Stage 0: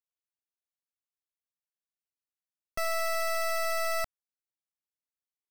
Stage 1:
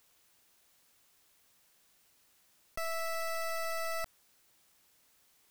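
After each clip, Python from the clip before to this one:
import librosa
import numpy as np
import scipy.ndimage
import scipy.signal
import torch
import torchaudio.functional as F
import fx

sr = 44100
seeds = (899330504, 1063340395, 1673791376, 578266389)

y = fx.env_flatten(x, sr, amount_pct=50)
y = F.gain(torch.from_numpy(y), -6.0).numpy()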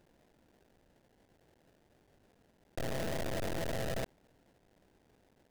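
y = fx.sample_hold(x, sr, seeds[0], rate_hz=1200.0, jitter_pct=20)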